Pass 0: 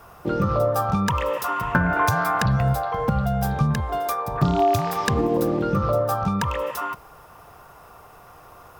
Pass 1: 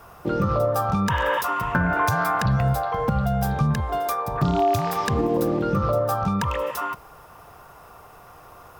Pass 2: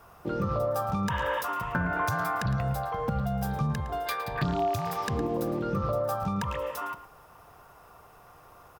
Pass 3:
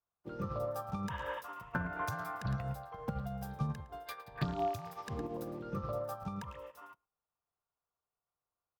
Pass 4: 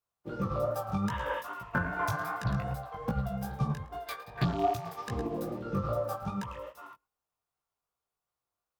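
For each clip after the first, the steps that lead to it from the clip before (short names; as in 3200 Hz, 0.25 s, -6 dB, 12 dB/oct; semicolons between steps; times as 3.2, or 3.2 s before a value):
spectral repair 1.13–1.39, 710–3700 Hz before; in parallel at +2.5 dB: limiter -14.5 dBFS, peak gain reduction 9.5 dB; on the sum: gain -7 dB
spectral gain 4.07–4.44, 1500–5000 Hz +12 dB; outdoor echo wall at 19 m, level -13 dB; gain -7 dB
upward expander 2.5:1, over -50 dBFS; gain -4.5 dB
in parallel at -6 dB: crossover distortion -58.5 dBFS; on the sum: chorus 2.5 Hz, delay 15.5 ms, depth 5.5 ms; gain +5.5 dB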